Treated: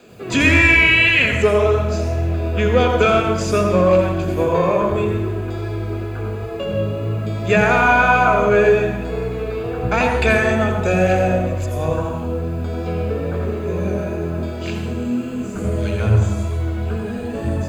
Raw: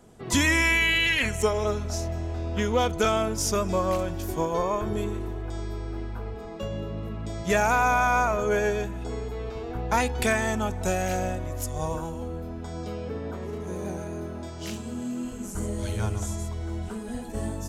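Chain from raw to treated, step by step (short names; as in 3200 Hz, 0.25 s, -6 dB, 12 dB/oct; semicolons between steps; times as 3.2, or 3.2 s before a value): high shelf 5300 Hz -9.5 dB; requantised 10-bit, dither triangular; in parallel at -6 dB: hard clip -23 dBFS, distortion -11 dB; on the sum: wow and flutter 27 cents; reverb RT60 0.85 s, pre-delay 80 ms, DRR 5 dB; gain -2.5 dB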